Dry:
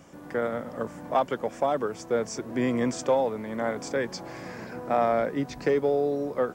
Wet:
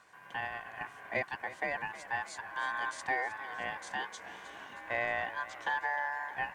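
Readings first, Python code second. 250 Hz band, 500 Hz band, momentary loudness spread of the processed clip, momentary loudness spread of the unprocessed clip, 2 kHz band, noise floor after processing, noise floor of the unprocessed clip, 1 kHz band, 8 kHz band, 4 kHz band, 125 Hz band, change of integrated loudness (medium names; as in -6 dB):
-23.0 dB, -17.5 dB, 10 LU, 11 LU, +4.5 dB, -53 dBFS, -44 dBFS, -6.0 dB, -10.0 dB, -4.0 dB, -16.5 dB, -8.5 dB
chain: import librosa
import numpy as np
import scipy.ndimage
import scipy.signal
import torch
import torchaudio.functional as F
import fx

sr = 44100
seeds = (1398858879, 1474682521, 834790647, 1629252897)

y = x * np.sin(2.0 * np.pi * 1300.0 * np.arange(len(x)) / sr)
y = fx.highpass(y, sr, hz=98.0, slope=6)
y = fx.echo_warbled(y, sr, ms=311, feedback_pct=60, rate_hz=2.8, cents=97, wet_db=-15.0)
y = y * librosa.db_to_amplitude(-7.0)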